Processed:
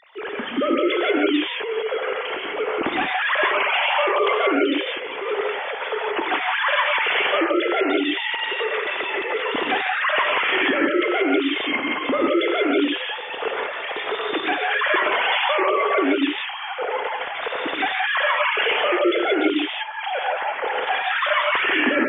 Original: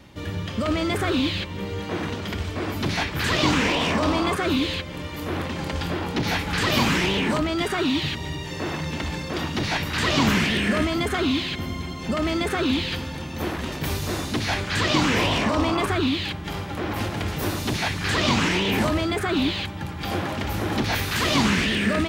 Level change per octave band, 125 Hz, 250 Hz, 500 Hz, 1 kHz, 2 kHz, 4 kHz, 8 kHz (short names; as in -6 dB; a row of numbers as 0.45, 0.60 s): under -25 dB, -1.0 dB, +6.0 dB, +5.5 dB, +6.0 dB, +0.5 dB, under -40 dB